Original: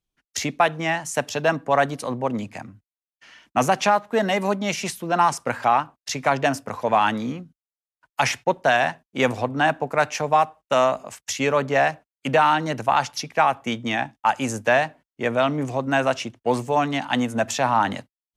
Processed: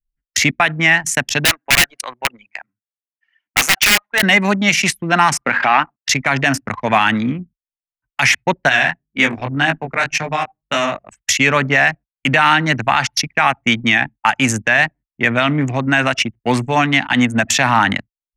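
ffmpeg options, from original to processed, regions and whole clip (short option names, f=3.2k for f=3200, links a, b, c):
-filter_complex "[0:a]asettb=1/sr,asplit=3[a][b][c];[a]atrim=end=1.454[d];[b]atrim=start=1.45:end=4.23,asetpts=PTS-STARTPTS,afade=t=in:d=0.004:c=qsin,afade=t=out:st=2.776:d=0.004:c=qsin,highpass=740,bandreject=f=1.2k:w=25,aeval=exprs='(mod(7.08*val(0)+1,2)-1)/7.08':c=same[e];[c]atrim=start=4.226[f];[d][e]acrossfade=d=0.004:c1=hsin:c2=qsin[g];[g][f]acrossfade=d=0.004:c1=qsin:c2=hsin,asettb=1/sr,asplit=3[h][i][j];[h]atrim=end=5.414[k];[i]atrim=start=5.41:end=6.09,asetpts=PTS-STARTPTS,afade=t=in:d=0.004:c=qsin,afade=t=out:st=0.676:d=0.004:c=qsin,highpass=240,lowpass=3.5k,acontrast=35[l];[j]atrim=start=6.086[m];[k][l]acrossfade=d=0.004:c1=hsin:c2=qsin[n];[n][m]acrossfade=d=0.004:c1=qsin:c2=hsin,asettb=1/sr,asplit=3[o][p][q];[o]atrim=end=8.694[r];[p]atrim=start=8.69:end=11.08,asetpts=PTS-STARTPTS,afade=t=in:d=0.004:c=qsin,afade=t=out:st=2.386:d=0.004:c=qsin,bandreject=f=50:t=h:w=6,bandreject=f=100:t=h:w=6,bandreject=f=150:t=h:w=6,bandreject=f=200:t=h:w=6,bandreject=f=250:t=h:w=6,bandreject=f=300:t=h:w=6,bandreject=f=350:t=h:w=6,bandreject=f=400:t=h:w=6,acrossover=split=470|3000[s][t][u];[t]acompressor=threshold=-19dB:ratio=6:attack=3.2:release=140:knee=2.83:detection=peak[v];[s][v][u]amix=inputs=3:normalize=0,flanger=delay=18.5:depth=4.8:speed=1.9[w];[q]atrim=start=11.076[x];[r][w]acrossfade=d=0.004:c1=hsin:c2=qsin[y];[y][x]acrossfade=d=0.004:c1=qsin:c2=hsin,anlmdn=15.8,equalizer=f=500:t=o:w=1:g=-10,equalizer=f=1k:t=o:w=1:g=-5,equalizer=f=2k:t=o:w=1:g=8,alimiter=level_in=12dB:limit=-1dB:release=50:level=0:latency=1,volume=-1dB"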